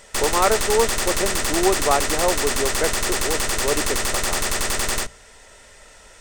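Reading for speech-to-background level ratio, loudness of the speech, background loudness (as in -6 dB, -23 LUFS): -2.0 dB, -24.0 LUFS, -22.0 LUFS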